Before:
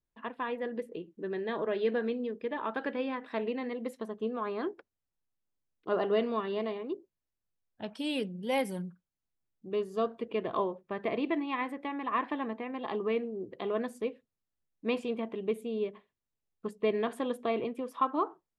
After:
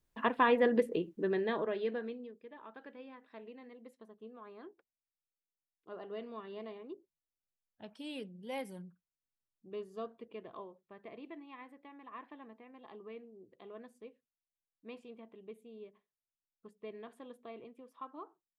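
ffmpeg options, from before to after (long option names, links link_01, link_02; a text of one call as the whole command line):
ffmpeg -i in.wav -af "volume=14.5dB,afade=type=out:start_time=0.77:duration=0.95:silence=0.237137,afade=type=out:start_time=1.72:duration=0.67:silence=0.237137,afade=type=in:start_time=5.99:duration=0.82:silence=0.473151,afade=type=out:start_time=9.86:duration=0.8:silence=0.446684" out.wav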